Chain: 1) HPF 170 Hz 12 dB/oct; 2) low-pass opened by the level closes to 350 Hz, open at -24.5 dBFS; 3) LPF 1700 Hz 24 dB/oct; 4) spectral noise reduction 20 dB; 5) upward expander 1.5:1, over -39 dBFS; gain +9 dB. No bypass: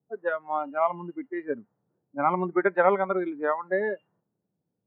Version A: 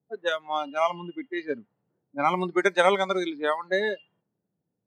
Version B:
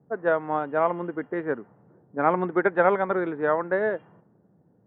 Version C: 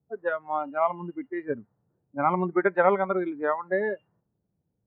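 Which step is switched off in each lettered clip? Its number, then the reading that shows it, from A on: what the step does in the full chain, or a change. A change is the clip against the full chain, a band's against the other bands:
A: 3, 2 kHz band +3.5 dB; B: 4, crest factor change -1.5 dB; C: 1, 125 Hz band +3.0 dB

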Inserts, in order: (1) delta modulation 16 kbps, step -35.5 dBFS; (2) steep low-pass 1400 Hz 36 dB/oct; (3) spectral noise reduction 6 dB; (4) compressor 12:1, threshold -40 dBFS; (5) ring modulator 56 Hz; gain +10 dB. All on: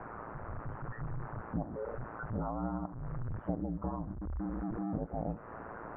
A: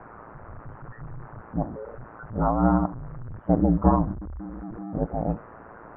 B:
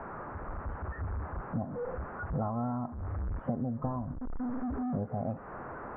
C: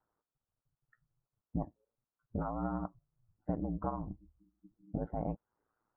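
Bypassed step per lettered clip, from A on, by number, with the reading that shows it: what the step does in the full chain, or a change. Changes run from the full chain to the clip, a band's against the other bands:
4, mean gain reduction 4.5 dB; 5, loudness change +3.0 LU; 1, 2 kHz band -10.5 dB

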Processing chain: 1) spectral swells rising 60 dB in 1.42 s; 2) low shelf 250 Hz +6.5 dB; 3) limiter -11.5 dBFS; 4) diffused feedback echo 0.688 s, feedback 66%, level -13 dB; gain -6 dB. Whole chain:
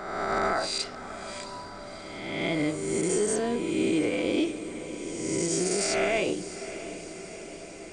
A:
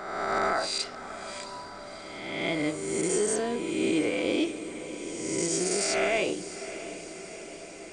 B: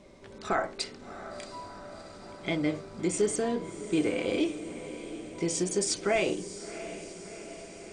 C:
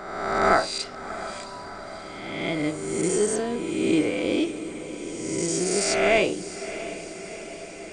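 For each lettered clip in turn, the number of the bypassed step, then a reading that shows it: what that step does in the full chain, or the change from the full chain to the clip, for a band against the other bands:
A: 2, 125 Hz band -4.0 dB; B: 1, loudness change -2.5 LU; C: 3, crest factor change +6.5 dB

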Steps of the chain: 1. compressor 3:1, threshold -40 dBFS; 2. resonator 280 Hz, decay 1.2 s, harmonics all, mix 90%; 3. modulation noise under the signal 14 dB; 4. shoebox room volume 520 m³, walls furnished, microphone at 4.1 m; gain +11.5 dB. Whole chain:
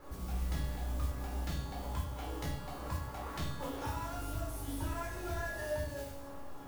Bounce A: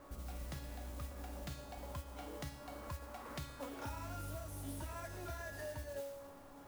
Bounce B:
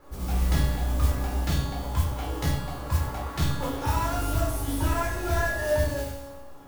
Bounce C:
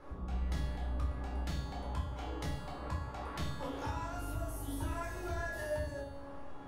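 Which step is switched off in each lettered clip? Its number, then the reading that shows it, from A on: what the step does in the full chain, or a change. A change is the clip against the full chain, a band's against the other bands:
4, echo-to-direct 2.0 dB to none; 1, mean gain reduction 9.5 dB; 3, 8 kHz band -3.5 dB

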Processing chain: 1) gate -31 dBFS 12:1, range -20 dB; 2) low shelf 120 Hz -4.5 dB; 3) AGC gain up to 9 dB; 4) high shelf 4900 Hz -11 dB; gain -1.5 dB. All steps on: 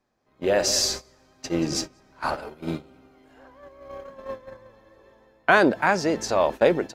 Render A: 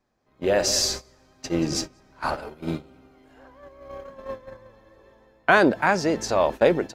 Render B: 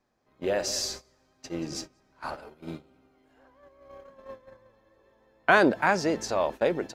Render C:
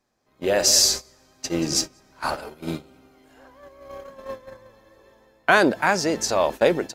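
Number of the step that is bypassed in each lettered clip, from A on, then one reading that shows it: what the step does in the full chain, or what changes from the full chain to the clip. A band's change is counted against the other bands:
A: 2, 125 Hz band +1.5 dB; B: 3, crest factor change +2.0 dB; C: 4, 8 kHz band +7.0 dB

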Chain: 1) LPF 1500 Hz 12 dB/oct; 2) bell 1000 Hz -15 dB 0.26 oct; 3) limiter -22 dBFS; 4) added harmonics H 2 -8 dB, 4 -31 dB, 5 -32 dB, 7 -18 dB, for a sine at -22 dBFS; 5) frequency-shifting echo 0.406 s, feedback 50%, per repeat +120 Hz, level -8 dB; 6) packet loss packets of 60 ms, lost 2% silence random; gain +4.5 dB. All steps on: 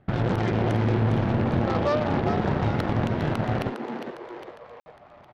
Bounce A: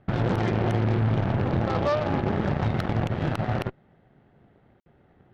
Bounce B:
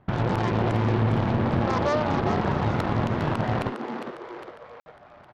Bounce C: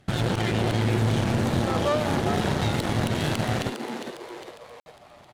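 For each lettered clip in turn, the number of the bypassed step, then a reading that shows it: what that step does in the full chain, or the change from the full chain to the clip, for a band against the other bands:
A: 5, momentary loudness spread change -10 LU; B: 2, 1 kHz band +2.5 dB; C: 1, 4 kHz band +9.0 dB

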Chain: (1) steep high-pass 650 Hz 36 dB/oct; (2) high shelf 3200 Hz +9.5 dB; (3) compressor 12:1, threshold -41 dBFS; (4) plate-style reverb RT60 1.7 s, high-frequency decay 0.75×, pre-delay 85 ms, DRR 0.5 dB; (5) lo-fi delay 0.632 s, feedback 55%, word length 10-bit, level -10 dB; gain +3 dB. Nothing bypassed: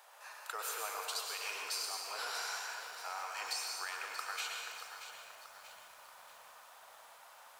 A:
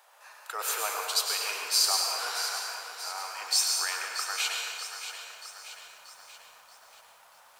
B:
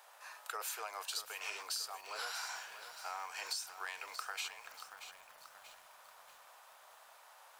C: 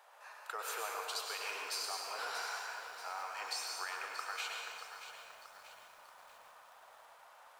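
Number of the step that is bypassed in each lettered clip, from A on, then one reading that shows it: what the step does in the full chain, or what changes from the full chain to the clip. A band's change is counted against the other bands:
3, mean gain reduction 4.0 dB; 4, crest factor change +2.5 dB; 2, 8 kHz band -3.0 dB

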